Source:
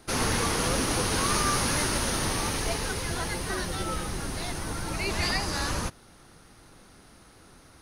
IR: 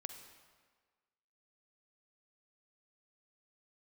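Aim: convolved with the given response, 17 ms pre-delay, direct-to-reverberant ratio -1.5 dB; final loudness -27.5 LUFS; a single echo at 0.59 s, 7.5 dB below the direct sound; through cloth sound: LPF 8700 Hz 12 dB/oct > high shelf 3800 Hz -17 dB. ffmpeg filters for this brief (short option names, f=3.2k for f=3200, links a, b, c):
-filter_complex "[0:a]aecho=1:1:590:0.422,asplit=2[a][b];[1:a]atrim=start_sample=2205,adelay=17[c];[b][c]afir=irnorm=-1:irlink=0,volume=4.5dB[d];[a][d]amix=inputs=2:normalize=0,lowpass=8.7k,highshelf=f=3.8k:g=-17,volume=-0.5dB"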